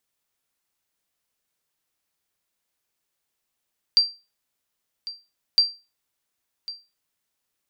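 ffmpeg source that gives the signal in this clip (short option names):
-f lavfi -i "aevalsrc='0.355*(sin(2*PI*4710*mod(t,1.61))*exp(-6.91*mod(t,1.61)/0.28)+0.141*sin(2*PI*4710*max(mod(t,1.61)-1.1,0))*exp(-6.91*max(mod(t,1.61)-1.1,0)/0.28))':d=3.22:s=44100"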